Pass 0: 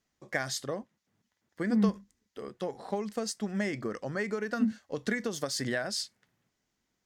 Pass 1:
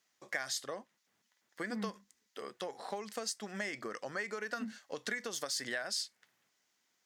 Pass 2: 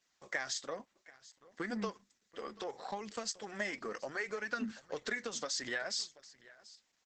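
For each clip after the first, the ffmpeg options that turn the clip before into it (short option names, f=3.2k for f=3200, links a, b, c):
-af "highpass=f=1.1k:p=1,acompressor=threshold=-45dB:ratio=2,volume=5.5dB"
-af "aecho=1:1:735:0.1,flanger=delay=0.3:depth=4.1:regen=-44:speed=0.65:shape=triangular,volume=5dB" -ar 48000 -c:a libopus -b:a 12k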